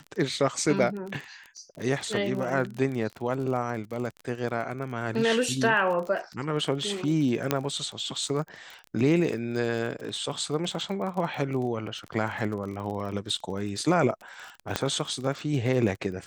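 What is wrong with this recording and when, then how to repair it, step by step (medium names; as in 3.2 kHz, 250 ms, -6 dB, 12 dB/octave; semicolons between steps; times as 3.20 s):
crackle 33 per s -33 dBFS
7.51 s: pop -8 dBFS
14.76 s: pop -9 dBFS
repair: de-click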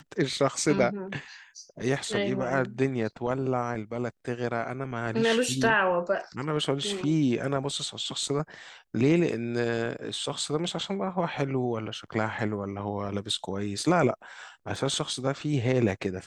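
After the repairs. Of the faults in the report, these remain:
14.76 s: pop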